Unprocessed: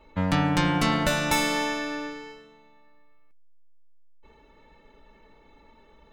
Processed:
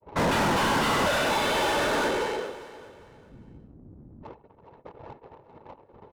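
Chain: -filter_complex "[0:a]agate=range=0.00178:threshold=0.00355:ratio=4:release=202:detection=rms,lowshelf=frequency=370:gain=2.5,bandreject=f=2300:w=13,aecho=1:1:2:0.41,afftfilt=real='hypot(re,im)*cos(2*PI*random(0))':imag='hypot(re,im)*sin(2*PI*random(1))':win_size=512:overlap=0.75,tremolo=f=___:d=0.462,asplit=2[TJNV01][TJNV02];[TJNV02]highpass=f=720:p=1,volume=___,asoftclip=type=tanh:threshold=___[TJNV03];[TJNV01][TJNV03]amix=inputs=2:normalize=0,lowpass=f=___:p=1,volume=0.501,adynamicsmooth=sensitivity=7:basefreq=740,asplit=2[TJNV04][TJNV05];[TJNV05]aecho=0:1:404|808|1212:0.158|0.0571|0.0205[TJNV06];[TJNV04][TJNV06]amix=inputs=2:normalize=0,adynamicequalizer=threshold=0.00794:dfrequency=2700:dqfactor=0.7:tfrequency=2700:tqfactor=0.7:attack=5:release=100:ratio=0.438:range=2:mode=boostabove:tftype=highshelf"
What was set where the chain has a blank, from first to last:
220, 63.1, 0.178, 1300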